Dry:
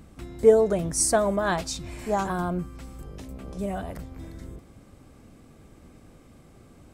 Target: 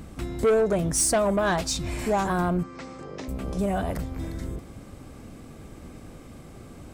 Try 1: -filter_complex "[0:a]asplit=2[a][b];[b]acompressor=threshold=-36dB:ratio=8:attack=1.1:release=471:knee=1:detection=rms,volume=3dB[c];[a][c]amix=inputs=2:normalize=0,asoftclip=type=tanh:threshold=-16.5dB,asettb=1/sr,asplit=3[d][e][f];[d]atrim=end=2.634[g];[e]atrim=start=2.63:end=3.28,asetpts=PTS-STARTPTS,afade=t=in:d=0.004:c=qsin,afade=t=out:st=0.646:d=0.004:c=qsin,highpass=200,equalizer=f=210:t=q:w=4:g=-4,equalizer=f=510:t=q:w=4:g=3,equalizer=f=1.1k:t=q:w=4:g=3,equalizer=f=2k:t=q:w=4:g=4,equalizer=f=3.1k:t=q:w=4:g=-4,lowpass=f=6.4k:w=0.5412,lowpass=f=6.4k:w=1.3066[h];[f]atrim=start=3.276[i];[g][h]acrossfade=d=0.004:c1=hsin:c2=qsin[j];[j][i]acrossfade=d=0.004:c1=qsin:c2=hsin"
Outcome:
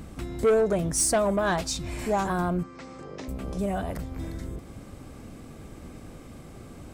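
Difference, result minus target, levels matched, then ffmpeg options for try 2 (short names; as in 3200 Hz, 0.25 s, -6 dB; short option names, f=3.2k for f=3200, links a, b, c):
compressor: peak gain reduction +8.5 dB
-filter_complex "[0:a]asplit=2[a][b];[b]acompressor=threshold=-26.5dB:ratio=8:attack=1.1:release=471:knee=1:detection=rms,volume=3dB[c];[a][c]amix=inputs=2:normalize=0,asoftclip=type=tanh:threshold=-16.5dB,asettb=1/sr,asplit=3[d][e][f];[d]atrim=end=2.634[g];[e]atrim=start=2.63:end=3.28,asetpts=PTS-STARTPTS,afade=t=in:d=0.004:c=qsin,afade=t=out:st=0.646:d=0.004:c=qsin,highpass=200,equalizer=f=210:t=q:w=4:g=-4,equalizer=f=510:t=q:w=4:g=3,equalizer=f=1.1k:t=q:w=4:g=3,equalizer=f=2k:t=q:w=4:g=4,equalizer=f=3.1k:t=q:w=4:g=-4,lowpass=f=6.4k:w=0.5412,lowpass=f=6.4k:w=1.3066[h];[f]atrim=start=3.276[i];[g][h]acrossfade=d=0.004:c1=hsin:c2=qsin[j];[j][i]acrossfade=d=0.004:c1=qsin:c2=hsin"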